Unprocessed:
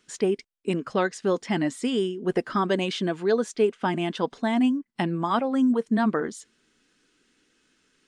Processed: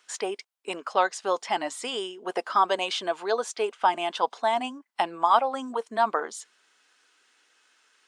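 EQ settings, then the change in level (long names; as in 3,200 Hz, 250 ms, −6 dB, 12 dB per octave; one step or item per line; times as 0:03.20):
dynamic equaliser 1,800 Hz, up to −7 dB, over −47 dBFS, Q 2.2
high-pass with resonance 800 Hz, resonance Q 1.7
+3.0 dB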